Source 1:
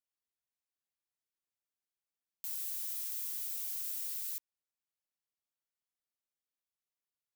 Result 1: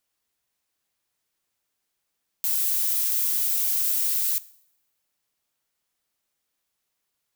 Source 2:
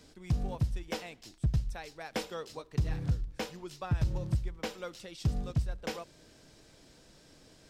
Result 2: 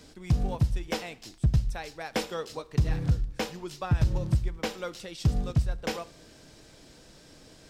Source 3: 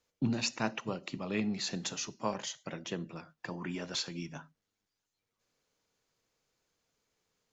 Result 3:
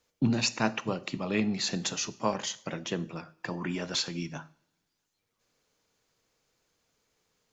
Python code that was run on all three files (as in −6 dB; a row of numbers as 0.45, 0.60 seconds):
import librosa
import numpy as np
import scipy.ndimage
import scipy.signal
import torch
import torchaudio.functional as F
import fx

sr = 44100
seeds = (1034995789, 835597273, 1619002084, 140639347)

y = fx.rev_double_slope(x, sr, seeds[0], early_s=0.64, late_s=1.9, knee_db=-24, drr_db=17.0)
y = y * 10.0 ** (-12 / 20.0) / np.max(np.abs(y))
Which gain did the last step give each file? +15.0, +5.5, +5.0 decibels